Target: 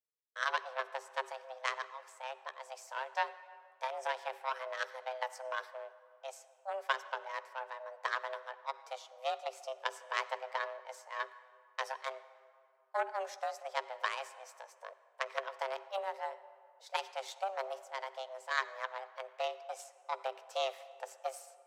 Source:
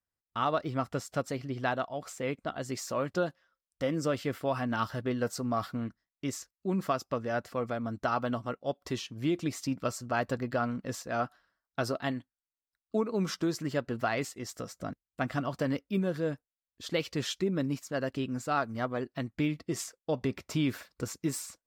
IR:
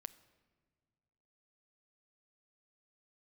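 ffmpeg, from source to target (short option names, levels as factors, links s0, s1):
-filter_complex "[0:a]aeval=exprs='0.168*(cos(1*acos(clip(val(0)/0.168,-1,1)))-cos(1*PI/2))+0.00237*(cos(2*acos(clip(val(0)/0.168,-1,1)))-cos(2*PI/2))+0.0473*(cos(3*acos(clip(val(0)/0.168,-1,1)))-cos(3*PI/2))':c=same,afreqshift=390,acontrast=23[s0];[1:a]atrim=start_sample=2205,asetrate=23814,aresample=44100[s1];[s0][s1]afir=irnorm=-1:irlink=0,volume=0.891"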